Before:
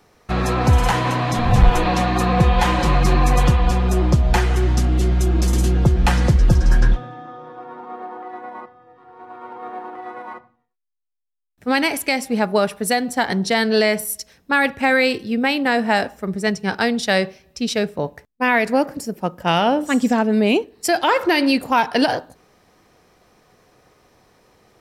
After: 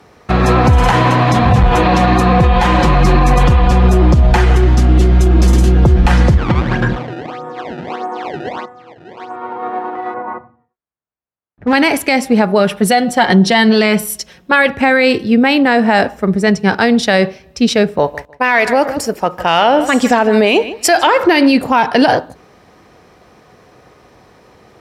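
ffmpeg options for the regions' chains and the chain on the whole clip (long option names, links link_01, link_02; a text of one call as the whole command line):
ffmpeg -i in.wav -filter_complex "[0:a]asettb=1/sr,asplit=3[link_01][link_02][link_03];[link_01]atrim=end=6.374[link_04];[link_02]atrim=start=6.37:end=9.36,asetpts=PTS-STARTPTS,afade=type=in:duration=0.004:curve=qsin,afade=type=out:start_time=2.986:duration=0.004:curve=qsin,acrusher=samples=23:mix=1:aa=0.000001:lfo=1:lforange=36.8:lforate=1.6,highpass=110,lowpass=3400[link_05];[link_03]atrim=start=9.356[link_06];[link_04][link_05]acrossfade=duration=0.004:curve1=hsin:curve2=qsin[link_07];[link_07][link_06]acrossfade=duration=0.004:curve1=qsin:curve2=hsin,asettb=1/sr,asplit=3[link_08][link_09][link_10];[link_08]atrim=end=10.144[link_11];[link_09]atrim=start=10.14:end=11.73,asetpts=PTS-STARTPTS,afade=type=in:duration=0.004:curve=qsin,afade=type=out:start_time=1.586:duration=0.004:curve=qsin,lowpass=1500,lowshelf=frequency=63:gain=12,asoftclip=type=hard:threshold=-19dB[link_12];[link_10]atrim=start=11.726[link_13];[link_11][link_12]acrossfade=duration=0.004:curve1=hsin:curve2=qsin[link_14];[link_14][link_13]acrossfade=duration=0.004:curve1=qsin:curve2=hsin,asettb=1/sr,asplit=3[link_15][link_16][link_17];[link_15]atrim=end=12.594[link_18];[link_16]atrim=start=12.59:end=14.69,asetpts=PTS-STARTPTS,afade=type=in:duration=0.004:curve=qsin,afade=type=out:start_time=2.096:duration=0.004:curve=qsin,equalizer=frequency=3100:width=6:gain=6,aecho=1:1:5.5:0.52,atrim=end_sample=92610[link_19];[link_17]atrim=start=14.686[link_20];[link_18][link_19]acrossfade=duration=0.004:curve1=hsin:curve2=qsin[link_21];[link_21][link_20]acrossfade=duration=0.004:curve1=qsin:curve2=hsin,asettb=1/sr,asplit=3[link_22][link_23][link_24];[link_22]atrim=end=17.984[link_25];[link_23]atrim=start=17.98:end=21.07,asetpts=PTS-STARTPTS,afade=type=in:duration=0.004:curve=qsin,afade=type=out:start_time=3.086:duration=0.004:curve=qsin,equalizer=frequency=190:width_type=o:width=2:gain=-13.5,acontrast=52,asplit=2[link_26][link_27];[link_27]adelay=153,lowpass=frequency=4800:poles=1,volume=-18dB,asplit=2[link_28][link_29];[link_29]adelay=153,lowpass=frequency=4800:poles=1,volume=0.21[link_30];[link_26][link_28][link_30]amix=inputs=3:normalize=0,atrim=end_sample=136269[link_31];[link_24]atrim=start=21.066[link_32];[link_25][link_31]acrossfade=duration=0.004:curve1=hsin:curve2=qsin[link_33];[link_33][link_32]acrossfade=duration=0.004:curve1=qsin:curve2=hsin,highpass=frequency=45:width=0.5412,highpass=frequency=45:width=1.3066,aemphasis=mode=reproduction:type=cd,alimiter=level_in=11.5dB:limit=-1dB:release=50:level=0:latency=1,volume=-1dB" out.wav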